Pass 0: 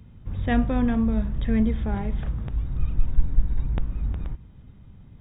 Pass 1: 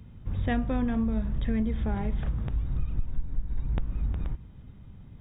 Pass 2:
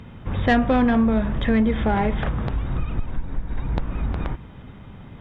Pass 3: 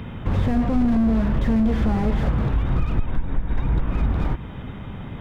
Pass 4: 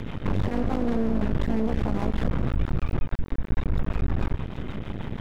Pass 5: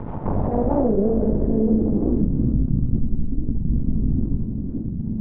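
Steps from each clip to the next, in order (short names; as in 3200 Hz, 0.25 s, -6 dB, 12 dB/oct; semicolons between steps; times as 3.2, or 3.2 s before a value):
compressor 6:1, threshold -23 dBFS, peak gain reduction 12.5 dB
overdrive pedal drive 17 dB, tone 2100 Hz, clips at -15.5 dBFS; gain +8 dB
in parallel at +2.5 dB: compressor, threshold -28 dBFS, peak gain reduction 13.5 dB; on the sum: slew limiter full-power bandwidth 33 Hz
rotary speaker horn 6.3 Hz; half-wave rectifier; limiter -21 dBFS, peak gain reduction 10 dB; gain +6.5 dB
low-pass sweep 910 Hz -> 240 Hz, 0.04–2.7; reverb RT60 1.1 s, pre-delay 33 ms, DRR 3 dB; record warp 45 rpm, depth 250 cents; gain +1.5 dB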